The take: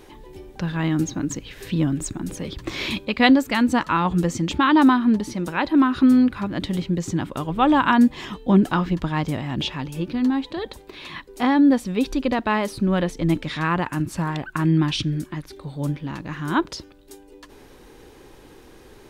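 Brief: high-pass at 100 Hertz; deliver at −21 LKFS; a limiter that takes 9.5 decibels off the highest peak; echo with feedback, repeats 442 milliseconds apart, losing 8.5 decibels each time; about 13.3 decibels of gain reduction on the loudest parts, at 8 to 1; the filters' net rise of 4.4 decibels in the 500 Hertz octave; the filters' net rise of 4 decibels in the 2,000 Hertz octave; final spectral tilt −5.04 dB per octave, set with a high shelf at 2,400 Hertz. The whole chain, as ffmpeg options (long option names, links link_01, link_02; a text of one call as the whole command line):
ffmpeg -i in.wav -af "highpass=100,equalizer=frequency=500:width_type=o:gain=5.5,equalizer=frequency=2000:width_type=o:gain=7,highshelf=frequency=2400:gain=-5,acompressor=threshold=-24dB:ratio=8,alimiter=limit=-20dB:level=0:latency=1,aecho=1:1:442|884|1326|1768:0.376|0.143|0.0543|0.0206,volume=8.5dB" out.wav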